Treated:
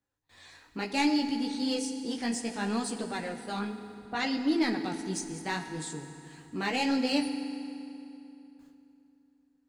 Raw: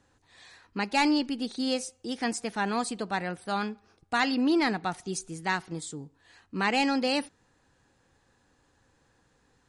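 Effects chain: in parallel at -9 dB: hard clipper -33.5 dBFS, distortion -4 dB; on the sum: dynamic bell 1.2 kHz, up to -6 dB, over -41 dBFS, Q 1; 3.59–4.77 s: level-controlled noise filter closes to 900 Hz, open at -21 dBFS; bit crusher 12-bit; gate with hold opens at -51 dBFS; chorus voices 2, 0.65 Hz, delay 17 ms, depth 4.6 ms; on a send at -7.5 dB: reverberation RT60 2.9 s, pre-delay 4 ms

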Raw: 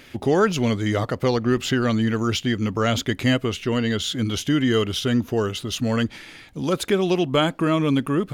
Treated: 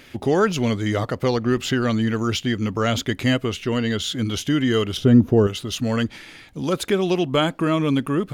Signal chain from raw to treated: 4.97–5.47 s: tilt shelf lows +9 dB

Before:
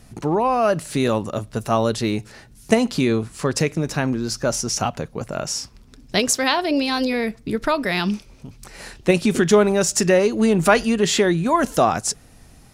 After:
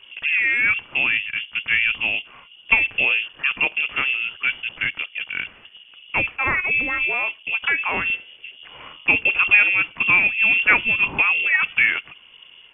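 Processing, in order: 8.01–9.18 s: de-hum 96.56 Hz, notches 24; frequency inversion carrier 2.9 kHz; trim -1 dB; MP2 64 kbps 44.1 kHz

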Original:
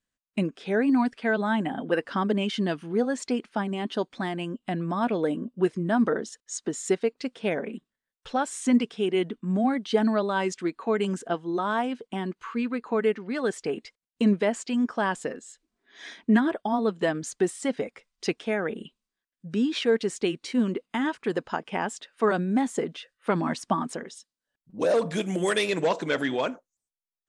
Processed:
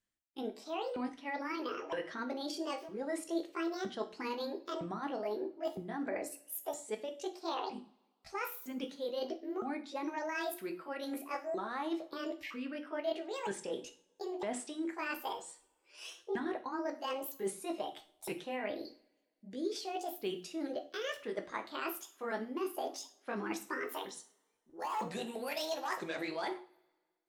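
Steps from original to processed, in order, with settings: sawtooth pitch modulation +11.5 st, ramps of 962 ms; reverse; compression, threshold -32 dBFS, peak gain reduction 15 dB; reverse; hum notches 60/120/180/240/300/360 Hz; two-slope reverb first 0.37 s, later 1.6 s, from -25 dB, DRR 5.5 dB; trim -4 dB

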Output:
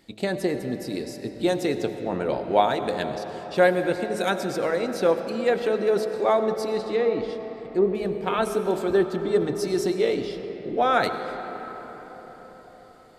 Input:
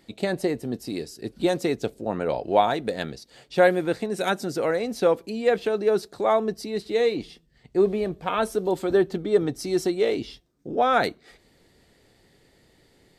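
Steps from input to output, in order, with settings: 6.76–7.95 s: low-pass that closes with the level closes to 1.1 kHz, closed at -15.5 dBFS; de-hum 53 Hz, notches 22; on a send: reverberation RT60 5.1 s, pre-delay 55 ms, DRR 8 dB

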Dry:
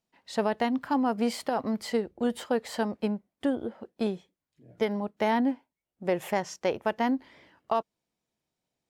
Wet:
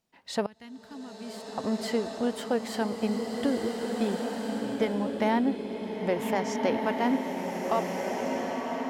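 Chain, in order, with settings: 0.46–1.58 s: amplifier tone stack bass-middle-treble 6-0-2; in parallel at +1.5 dB: compression, threshold -40 dBFS, peak gain reduction 17.5 dB; on the sum: swelling reverb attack 1750 ms, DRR 0.5 dB; trim -2.5 dB

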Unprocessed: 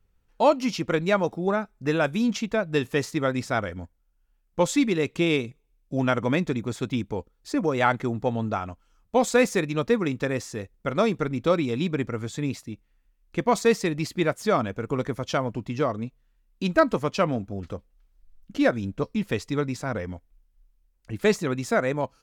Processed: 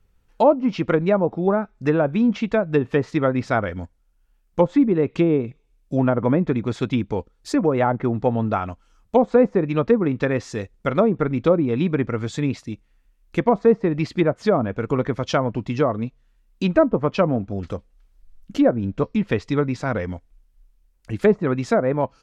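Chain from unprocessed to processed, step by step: low-pass that closes with the level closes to 760 Hz, closed at -18 dBFS; trim +5.5 dB

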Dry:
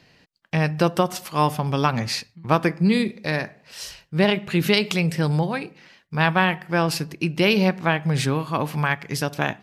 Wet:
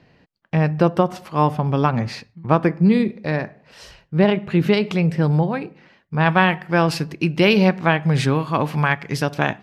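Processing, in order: low-pass 1.1 kHz 6 dB/octave, from 6.26 s 3.5 kHz; trim +4 dB

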